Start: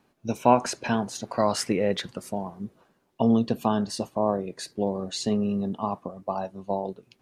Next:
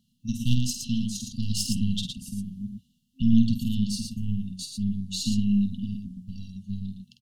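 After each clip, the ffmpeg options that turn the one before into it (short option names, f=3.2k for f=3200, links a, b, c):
-af "aeval=exprs='0.631*(cos(1*acos(clip(val(0)/0.631,-1,1)))-cos(1*PI/2))+0.316*(cos(2*acos(clip(val(0)/0.631,-1,1)))-cos(2*PI/2))+0.0708*(cos(6*acos(clip(val(0)/0.631,-1,1)))-cos(6*PI/2))':c=same,aecho=1:1:49.56|113.7:0.447|0.562,afftfilt=real='re*(1-between(b*sr/4096,260,2700))':imag='im*(1-between(b*sr/4096,260,2700))':win_size=4096:overlap=0.75"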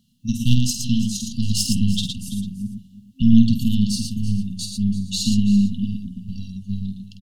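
-af "aecho=1:1:334:0.158,volume=6.5dB"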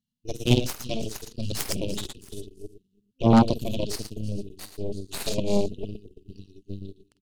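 -af "aeval=exprs='0.841*(cos(1*acos(clip(val(0)/0.841,-1,1)))-cos(1*PI/2))+0.106*(cos(7*acos(clip(val(0)/0.841,-1,1)))-cos(7*PI/2))+0.168*(cos(8*acos(clip(val(0)/0.841,-1,1)))-cos(8*PI/2))':c=same,volume=-4dB"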